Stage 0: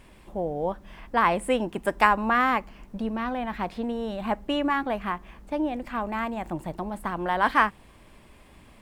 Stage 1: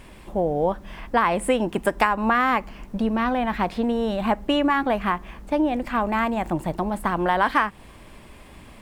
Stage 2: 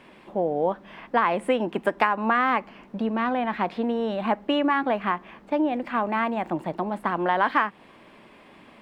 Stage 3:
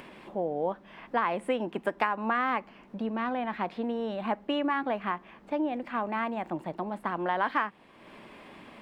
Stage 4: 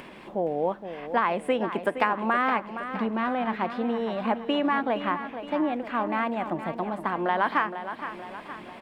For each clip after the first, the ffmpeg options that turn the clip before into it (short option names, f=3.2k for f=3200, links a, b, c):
-af "acompressor=threshold=-23dB:ratio=6,volume=7dB"
-filter_complex "[0:a]acrossover=split=160 4200:gain=0.0631 1 0.178[a][b][c];[a][b][c]amix=inputs=3:normalize=0,volume=-1.5dB"
-af "acompressor=mode=upward:threshold=-34dB:ratio=2.5,volume=-6dB"
-af "aecho=1:1:467|934|1401|1868|2335|2802:0.299|0.158|0.0839|0.0444|0.0236|0.0125,volume=3.5dB"